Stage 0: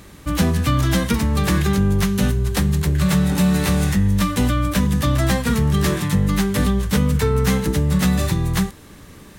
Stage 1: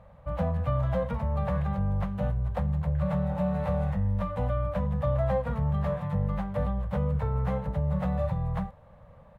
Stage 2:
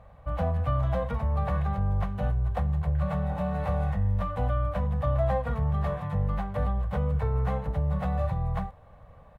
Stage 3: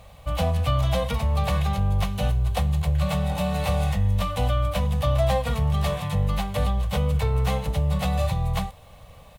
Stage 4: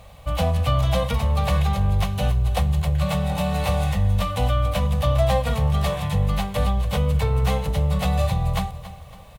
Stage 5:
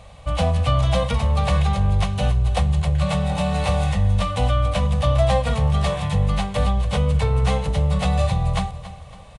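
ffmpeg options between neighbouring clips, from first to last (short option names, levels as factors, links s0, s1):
-af "firequalizer=gain_entry='entry(150,0);entry(360,-27);entry(520,9);entry(1600,-9);entry(5600,-30)':delay=0.05:min_phase=1,volume=0.376"
-af "aecho=1:1:2.7:0.4,volume=1.12"
-af "aexciter=amount=8.2:drive=3:freq=2400,volume=1.58"
-af "aecho=1:1:279|558|837|1116:0.178|0.0765|0.0329|0.0141,volume=1.26"
-af "aresample=22050,aresample=44100,volume=1.19"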